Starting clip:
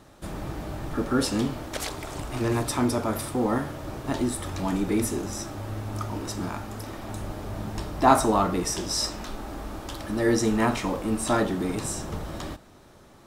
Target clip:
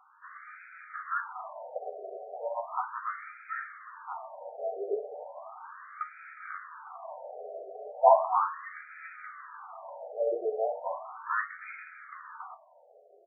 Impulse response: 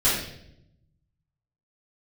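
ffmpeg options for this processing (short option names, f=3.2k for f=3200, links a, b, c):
-filter_complex "[0:a]bandreject=f=840:w=12,asplit=2[a][b];[b]adelay=12,volume=-5dB[c];[a][c]amix=inputs=2:normalize=0,afftfilt=real='re*between(b*sr/1024,540*pow(1800/540,0.5+0.5*sin(2*PI*0.36*pts/sr))/1.41,540*pow(1800/540,0.5+0.5*sin(2*PI*0.36*pts/sr))*1.41)':imag='im*between(b*sr/1024,540*pow(1800/540,0.5+0.5*sin(2*PI*0.36*pts/sr))/1.41,540*pow(1800/540,0.5+0.5*sin(2*PI*0.36*pts/sr))*1.41)':win_size=1024:overlap=0.75"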